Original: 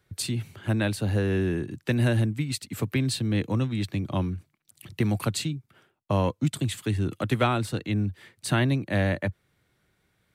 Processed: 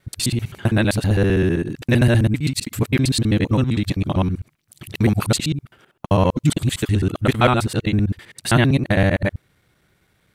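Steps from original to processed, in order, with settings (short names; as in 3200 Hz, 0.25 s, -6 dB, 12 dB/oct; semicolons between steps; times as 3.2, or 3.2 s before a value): local time reversal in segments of 65 ms; gain +8 dB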